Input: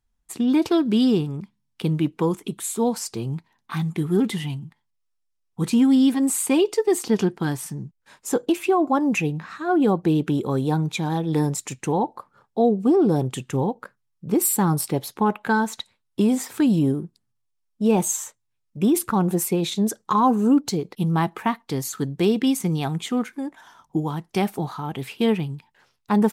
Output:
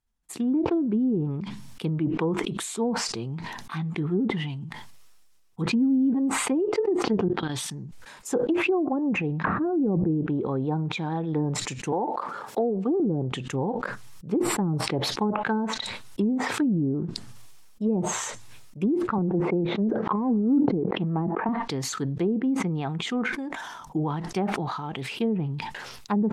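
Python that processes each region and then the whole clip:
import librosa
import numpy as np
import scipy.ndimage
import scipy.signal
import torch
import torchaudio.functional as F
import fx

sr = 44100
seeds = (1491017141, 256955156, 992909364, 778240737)

y = fx.chain(x, sr, fx.peak_eq(hz=3600.0, db=14.0, octaves=0.56),
    fx.level_steps(step_db=22), at=(7.28, 7.71))
y = fx.chain(y, sr, fx.lowpass(hz=3200.0, slope=24),
    fx.env_flatten(amount_pct=100), at=(9.44, 10.11))
y = fx.chain(y, sr, fx.highpass(hz=290.0, slope=12),
    fx.band_squash(depth_pct=70), at=(11.92, 13.0))
y = fx.chain(y, sr, fx.leveller(passes=1),
    fx.bandpass_edges(low_hz=180.0, high_hz=2300.0),
    fx.sustainer(db_per_s=29.0), at=(19.18, 21.49))
y = fx.env_lowpass_down(y, sr, base_hz=380.0, full_db=-15.0)
y = fx.low_shelf(y, sr, hz=180.0, db=-3.5)
y = fx.sustainer(y, sr, db_per_s=30.0)
y = y * librosa.db_to_amplitude(-3.5)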